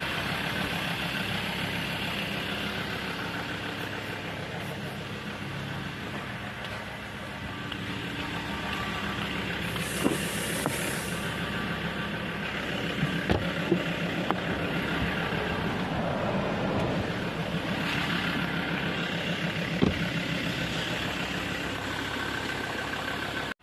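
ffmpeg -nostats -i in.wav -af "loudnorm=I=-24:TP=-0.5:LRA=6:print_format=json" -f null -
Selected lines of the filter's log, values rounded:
"input_i" : "-30.5",
"input_tp" : "-5.8",
"input_lra" : "5.3",
"input_thresh" : "-40.5",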